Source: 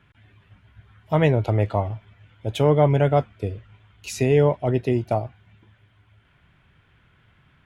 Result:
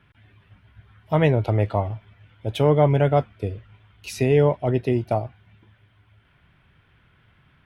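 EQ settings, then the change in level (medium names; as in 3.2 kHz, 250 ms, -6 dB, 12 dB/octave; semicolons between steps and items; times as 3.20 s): peaking EQ 7 kHz -8.5 dB 0.27 oct; 0.0 dB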